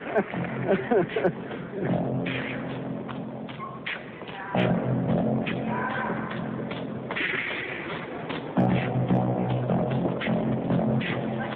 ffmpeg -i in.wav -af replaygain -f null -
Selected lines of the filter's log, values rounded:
track_gain = +8.6 dB
track_peak = 0.182